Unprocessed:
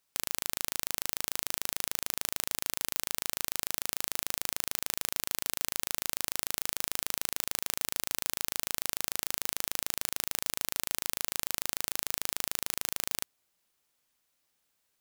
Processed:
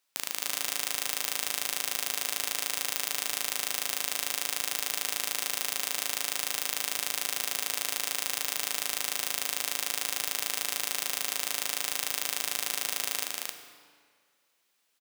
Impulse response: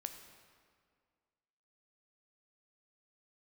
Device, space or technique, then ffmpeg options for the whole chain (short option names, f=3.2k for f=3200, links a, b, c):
stadium PA: -filter_complex "[0:a]highpass=220,equalizer=f=2.9k:t=o:w=2.6:g=4,aecho=1:1:204.1|268.2:0.282|0.794[a];[1:a]atrim=start_sample=2205[b];[a][b]afir=irnorm=-1:irlink=0,volume=2dB"